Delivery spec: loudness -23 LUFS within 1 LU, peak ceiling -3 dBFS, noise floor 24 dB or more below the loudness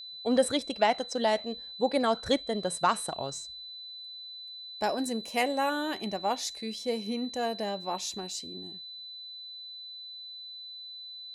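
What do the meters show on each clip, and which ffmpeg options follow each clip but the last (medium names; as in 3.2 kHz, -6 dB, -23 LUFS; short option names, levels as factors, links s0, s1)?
steady tone 4 kHz; tone level -41 dBFS; loudness -32.0 LUFS; peak level -12.0 dBFS; loudness target -23.0 LUFS
-> -af "bandreject=f=4000:w=30"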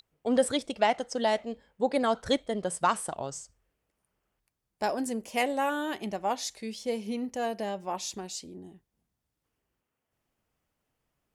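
steady tone not found; loudness -30.5 LUFS; peak level -12.0 dBFS; loudness target -23.0 LUFS
-> -af "volume=2.37"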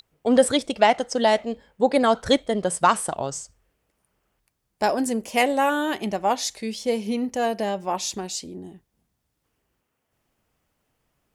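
loudness -23.0 LUFS; peak level -4.5 dBFS; noise floor -77 dBFS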